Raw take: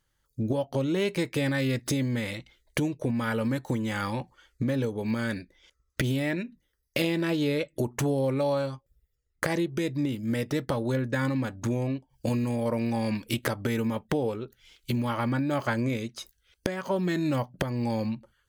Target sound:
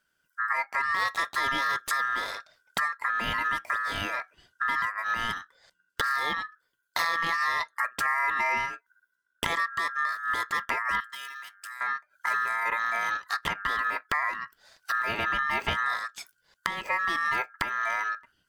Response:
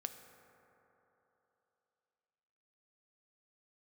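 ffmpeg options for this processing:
-filter_complex "[0:a]asettb=1/sr,asplit=3[s0][s1][s2];[s0]atrim=end=13.124[s3];[s1]atrim=start=13.12:end=13.83,asetpts=PTS-STARTPTS,afade=t=in:d=0.004:c=qsin,afade=t=out:st=0.706:d=0.004:c=qsin,highshelf=f=7100:g=-10.5[s4];[s2]atrim=start=13.826[s5];[s3][s4]acrossfade=d=0.004:c1=hsin:c2=qsin[s6];[s6][s5]acrossfade=d=0.004:c1=qsin:c2=hsin,aeval=exprs='val(0)*sin(2*PI*1500*n/s)':c=same,asettb=1/sr,asplit=3[s7][s8][s9];[s7]atrim=end=11.004[s10];[s8]atrim=start=11:end=11.81,asetpts=PTS-STARTPTS,afade=t=in:d=0.004:c=qsin,afade=t=out:st=0.806:d=0.004:c=qsin,aderivative[s11];[s9]atrim=start=11.806[s12];[s10][s11]acrossfade=d=0.004:c1=hsin:c2=qsin[s13];[s13][s12]acrossfade=d=0.004:c1=qsin:c2=hsin,volume=1.26"

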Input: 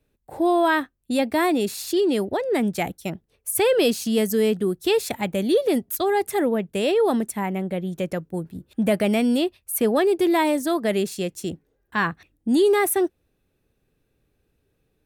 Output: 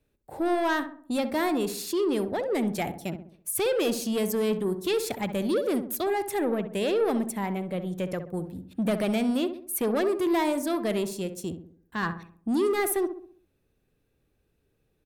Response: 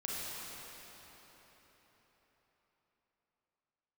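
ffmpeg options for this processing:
-filter_complex "[0:a]asettb=1/sr,asplit=3[s0][s1][s2];[s0]atrim=end=11.044[s3];[s1]atrim=start=11.04:end=12.03,asetpts=PTS-STARTPTS,afade=t=in:d=0.004:c=qsin,afade=t=out:st=0.986:d=0.004:c=qsin,equalizer=f=1500:t=o:w=2.9:g=-5[s4];[s2]atrim=start=12.026[s5];[s3][s4]acrossfade=d=0.004:c1=hsin:c2=qsin[s6];[s6][s5]acrossfade=d=0.004:c1=qsin:c2=hsin,asoftclip=type=tanh:threshold=0.126,asplit=2[s7][s8];[s8]adelay=65,lowpass=f=1300:p=1,volume=0.376,asplit=2[s9][s10];[s10]adelay=65,lowpass=f=1300:p=1,volume=0.49,asplit=2[s11][s12];[s12]adelay=65,lowpass=f=1300:p=1,volume=0.49,asplit=2[s13][s14];[s14]adelay=65,lowpass=f=1300:p=1,volume=0.49,asplit=2[s15][s16];[s16]adelay=65,lowpass=f=1300:p=1,volume=0.49,asplit=2[s17][s18];[s18]adelay=65,lowpass=f=1300:p=1,volume=0.49[s19];[s7][s9][s11][s13][s15][s17][s19]amix=inputs=7:normalize=0,volume=0.708"

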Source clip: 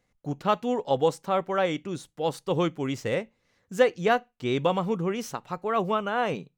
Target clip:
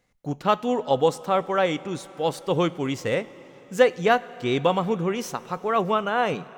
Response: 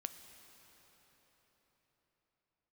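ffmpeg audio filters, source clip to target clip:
-filter_complex "[0:a]asplit=2[s0][s1];[1:a]atrim=start_sample=2205,lowshelf=f=270:g=-8.5[s2];[s1][s2]afir=irnorm=-1:irlink=0,volume=0.794[s3];[s0][s3]amix=inputs=2:normalize=0"

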